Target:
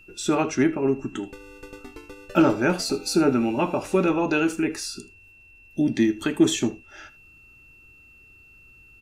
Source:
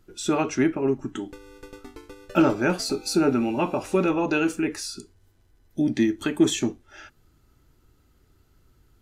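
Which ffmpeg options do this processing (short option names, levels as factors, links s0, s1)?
-af "aecho=1:1:78:0.126,aeval=exprs='val(0)+0.00282*sin(2*PI*2700*n/s)':c=same,volume=1.12"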